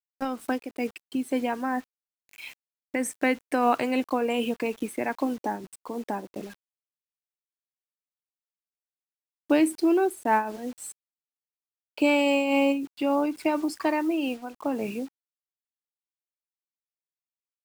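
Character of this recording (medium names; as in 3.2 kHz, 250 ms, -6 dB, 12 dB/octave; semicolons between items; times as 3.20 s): a quantiser's noise floor 8-bit, dither none; random flutter of the level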